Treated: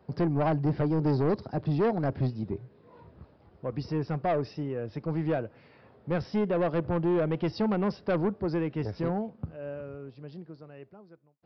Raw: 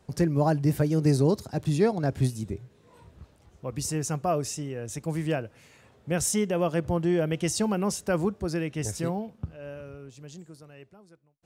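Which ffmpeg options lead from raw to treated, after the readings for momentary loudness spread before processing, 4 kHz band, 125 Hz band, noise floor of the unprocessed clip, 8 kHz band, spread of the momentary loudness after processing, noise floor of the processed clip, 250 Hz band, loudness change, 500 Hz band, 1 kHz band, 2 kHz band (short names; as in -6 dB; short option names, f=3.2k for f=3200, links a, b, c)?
17 LU, -9.0 dB, -2.5 dB, -60 dBFS, under -30 dB, 17 LU, -60 dBFS, -1.5 dB, -2.5 dB, -1.0 dB, -0.5 dB, -3.0 dB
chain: -af "highpass=f=160:p=1,equalizer=f=3.6k:w=0.63:g=-11.5,aresample=11025,asoftclip=type=tanh:threshold=-25dB,aresample=44100,volume=4dB"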